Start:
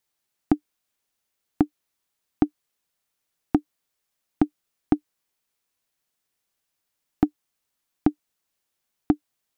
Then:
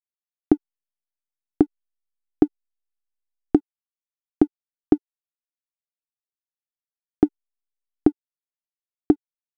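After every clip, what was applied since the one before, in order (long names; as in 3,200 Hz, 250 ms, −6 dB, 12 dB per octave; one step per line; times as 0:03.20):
slack as between gear wheels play −43 dBFS
graphic EQ with 15 bands 400 Hz +12 dB, 1,000 Hz −4 dB, 2,500 Hz −4 dB
level −1 dB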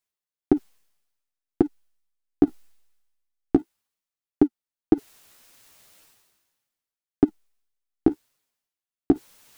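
reversed playback
upward compression, threshold −22 dBFS
reversed playback
flanger 1.8 Hz, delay 6.9 ms, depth 9.3 ms, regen +18%
level +2.5 dB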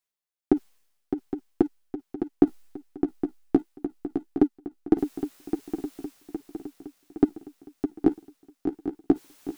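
parametric band 69 Hz −7.5 dB 1.6 octaves
on a send: feedback echo with a long and a short gap by turns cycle 814 ms, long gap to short 3 to 1, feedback 52%, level −8 dB
on the sum: level −1 dB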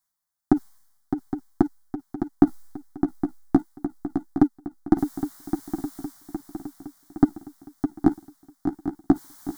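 phaser with its sweep stopped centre 1,100 Hz, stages 4
level +8.5 dB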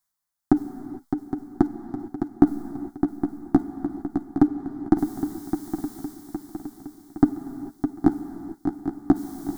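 reverb whose tail is shaped and stops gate 480 ms flat, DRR 10.5 dB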